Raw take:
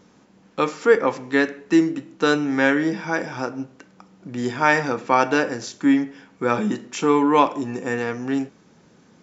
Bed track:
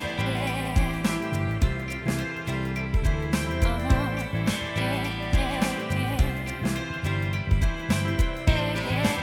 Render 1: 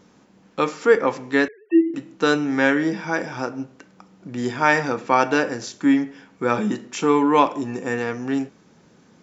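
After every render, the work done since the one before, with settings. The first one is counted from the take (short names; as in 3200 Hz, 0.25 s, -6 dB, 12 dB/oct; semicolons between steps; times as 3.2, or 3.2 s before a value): 1.48–1.94 sine-wave speech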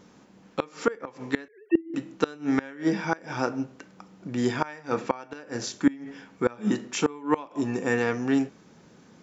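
flipped gate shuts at -9 dBFS, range -24 dB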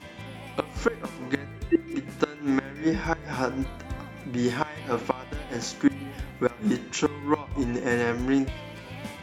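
add bed track -14 dB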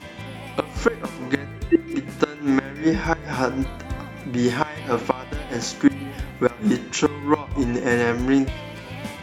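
gain +5 dB; limiter -3 dBFS, peak gain reduction 1.5 dB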